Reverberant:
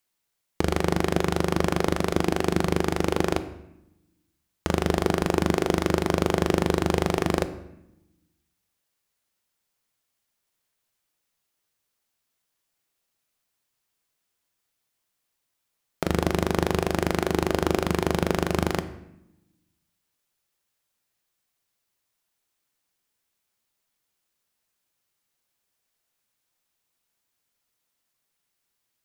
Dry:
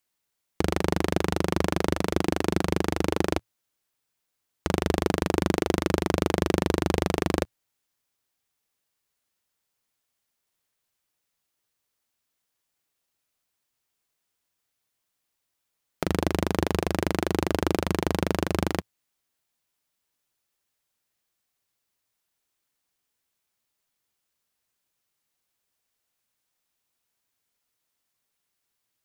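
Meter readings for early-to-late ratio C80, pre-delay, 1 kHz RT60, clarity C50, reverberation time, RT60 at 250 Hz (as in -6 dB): 15.5 dB, 5 ms, 0.85 s, 13.5 dB, 0.85 s, 1.2 s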